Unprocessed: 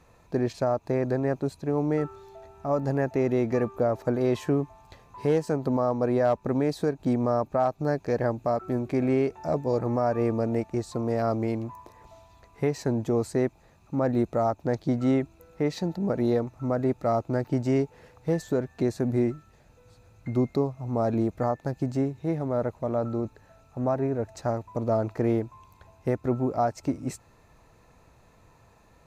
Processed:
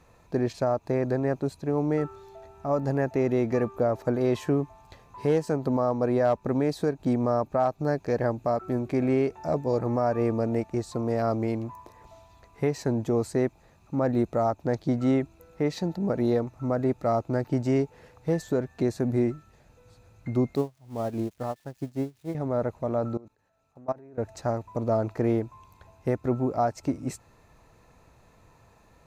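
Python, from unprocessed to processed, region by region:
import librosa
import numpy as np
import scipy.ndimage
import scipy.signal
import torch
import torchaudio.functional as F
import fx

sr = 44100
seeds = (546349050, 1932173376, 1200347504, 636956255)

y = fx.chain(x, sr, fx.crossing_spikes(level_db=-28.0),
    fx.high_shelf(hz=7700.0, db=-10.5),
    fx.upward_expand(threshold_db=-35.0, expansion=2.5), at=(20.55, 22.35))
y = fx.chain(y, sr, fx.low_shelf(hz=120.0, db=-10.0),
    fx.level_steps(step_db=24), at=(23.17, 24.18))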